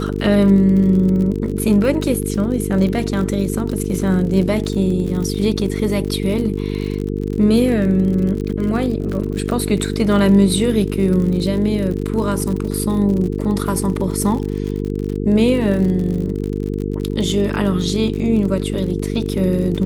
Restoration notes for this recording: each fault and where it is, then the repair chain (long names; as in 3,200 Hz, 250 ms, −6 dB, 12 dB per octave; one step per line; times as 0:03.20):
mains buzz 50 Hz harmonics 9 −22 dBFS
surface crackle 51 per second −24 dBFS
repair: click removal
hum removal 50 Hz, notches 9